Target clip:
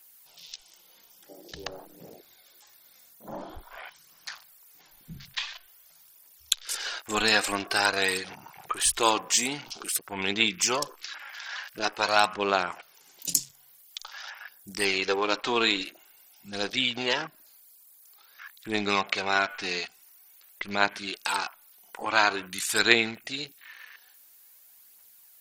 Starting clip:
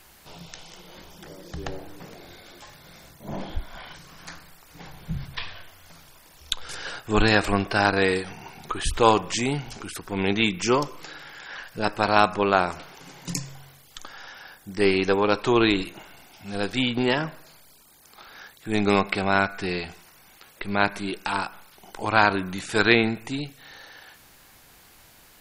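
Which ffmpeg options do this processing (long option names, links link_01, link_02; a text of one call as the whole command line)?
ffmpeg -i in.wav -filter_complex "[0:a]aemphasis=mode=production:type=riaa,aphaser=in_gain=1:out_gain=1:delay=4.5:decay=0.36:speed=0.48:type=triangular,asplit=2[link_01][link_02];[link_02]acompressor=threshold=-32dB:ratio=8,volume=-2.5dB[link_03];[link_01][link_03]amix=inputs=2:normalize=0,afwtdn=0.0178,volume=-5.5dB" out.wav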